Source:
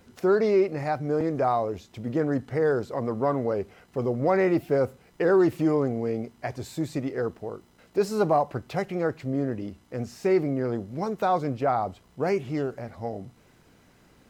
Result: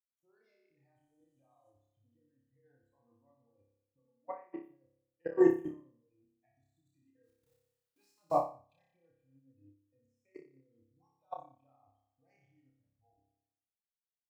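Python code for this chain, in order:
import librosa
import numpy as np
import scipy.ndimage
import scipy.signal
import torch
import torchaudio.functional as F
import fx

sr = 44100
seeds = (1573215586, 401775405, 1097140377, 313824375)

p1 = fx.delta_mod(x, sr, bps=64000, step_db=-36.0, at=(0.96, 1.68))
p2 = fx.noise_reduce_blind(p1, sr, reduce_db=24)
p3 = fx.quant_dither(p2, sr, seeds[0], bits=8, dither='triangular', at=(7.23, 8.24))
p4 = fx.level_steps(p3, sr, step_db=21)
p5 = fx.bandpass_edges(p4, sr, low_hz=290.0, high_hz=2300.0, at=(3.99, 4.63))
p6 = p5 + fx.room_flutter(p5, sr, wall_m=5.1, rt60_s=0.91, dry=0)
p7 = fx.upward_expand(p6, sr, threshold_db=-38.0, expansion=2.5)
y = p7 * librosa.db_to_amplitude(-2.0)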